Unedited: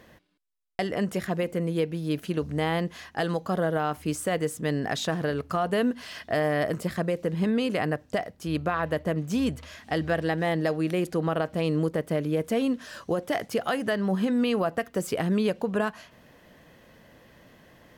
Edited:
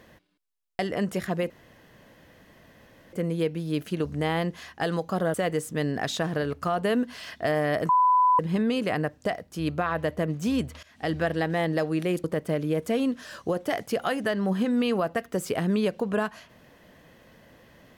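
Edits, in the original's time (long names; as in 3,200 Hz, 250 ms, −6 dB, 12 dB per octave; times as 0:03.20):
0:01.50: splice in room tone 1.63 s
0:03.71–0:04.22: remove
0:06.77–0:07.27: beep over 1,000 Hz −16.5 dBFS
0:09.71–0:09.99: fade in, from −19.5 dB
0:11.12–0:11.86: remove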